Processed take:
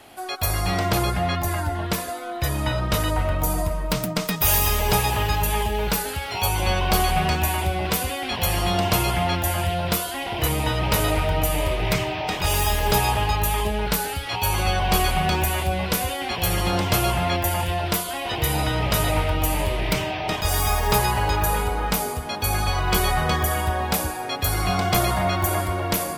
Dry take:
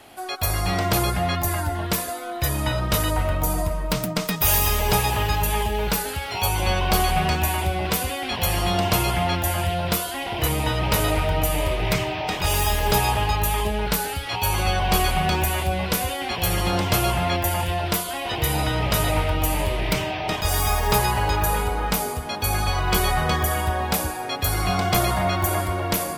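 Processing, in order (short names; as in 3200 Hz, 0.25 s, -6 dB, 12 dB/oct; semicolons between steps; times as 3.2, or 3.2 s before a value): 0.9–3.39 high shelf 7600 Hz -6.5 dB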